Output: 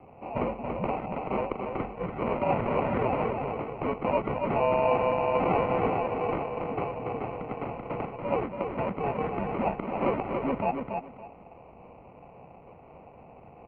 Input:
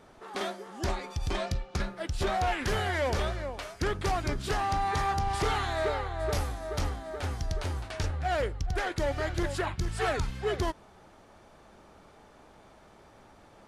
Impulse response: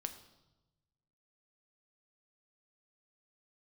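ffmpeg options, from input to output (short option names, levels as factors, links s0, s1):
-filter_complex "[0:a]bandreject=f=750:w=12,aecho=1:1:1:0.77,acrossover=split=710[s0][s1];[s0]alimiter=level_in=1.5:limit=0.0631:level=0:latency=1:release=211,volume=0.668[s2];[s1]acrusher=samples=24:mix=1:aa=0.000001[s3];[s2][s3]amix=inputs=2:normalize=0,aecho=1:1:283|566|849:0.562|0.124|0.0272,highpass=f=260:t=q:w=0.5412,highpass=f=260:t=q:w=1.307,lowpass=f=2400:t=q:w=0.5176,lowpass=f=2400:t=q:w=0.7071,lowpass=f=2400:t=q:w=1.932,afreqshift=-150,volume=2.24"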